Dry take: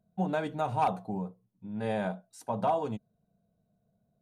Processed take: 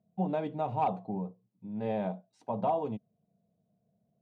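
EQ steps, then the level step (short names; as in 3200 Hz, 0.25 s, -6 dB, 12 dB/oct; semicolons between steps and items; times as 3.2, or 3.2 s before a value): BPF 110–2500 Hz; bell 1500 Hz -12 dB 0.68 oct; 0.0 dB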